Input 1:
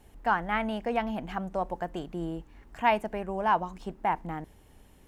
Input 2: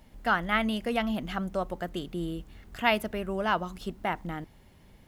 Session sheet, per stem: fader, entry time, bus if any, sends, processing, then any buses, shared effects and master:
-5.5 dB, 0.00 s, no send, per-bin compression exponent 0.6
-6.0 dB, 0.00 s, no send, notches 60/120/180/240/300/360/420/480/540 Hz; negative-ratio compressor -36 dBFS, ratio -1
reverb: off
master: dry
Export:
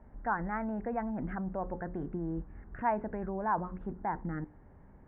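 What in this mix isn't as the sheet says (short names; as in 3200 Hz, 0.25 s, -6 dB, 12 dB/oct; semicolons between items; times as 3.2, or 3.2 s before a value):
stem 1: missing per-bin compression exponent 0.6; master: extra steep low-pass 1700 Hz 36 dB/oct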